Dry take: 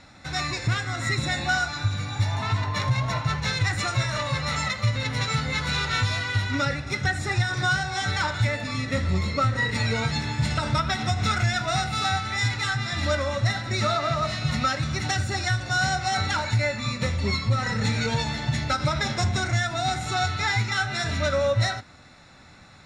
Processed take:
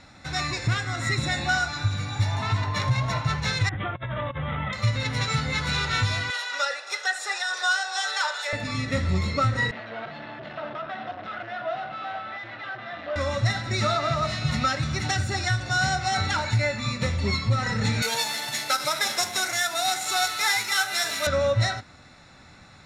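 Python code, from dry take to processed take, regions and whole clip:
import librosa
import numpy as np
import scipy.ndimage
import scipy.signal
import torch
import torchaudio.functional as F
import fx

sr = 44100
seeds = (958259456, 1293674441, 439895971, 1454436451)

y = fx.chain(x, sr, fx.lowpass(hz=1000.0, slope=6),
    fx.over_compress(threshold_db=-30.0, ratio=-0.5),
    fx.resample_bad(factor=6, down='none', up='filtered'), at=(3.69, 4.73))
y = fx.chain(y, sr, fx.ellip_highpass(hz=470.0, order=4, stop_db=80),
    fx.tilt_eq(slope=1.5),
    fx.notch(hz=2200.0, q=7.0), at=(6.3, 8.53))
y = fx.chain(y, sr, fx.clip_hard(threshold_db=-29.5),
    fx.cabinet(low_hz=310.0, low_slope=12, high_hz=2800.0, hz=(430.0, 650.0, 920.0, 2300.0), db=(-8, 10, -5, -8)), at=(9.71, 13.16))
y = fx.chain(y, sr, fx.cvsd(bps=64000),
    fx.highpass(hz=460.0, slope=12),
    fx.high_shelf(hz=4500.0, db=11.0), at=(18.02, 21.27))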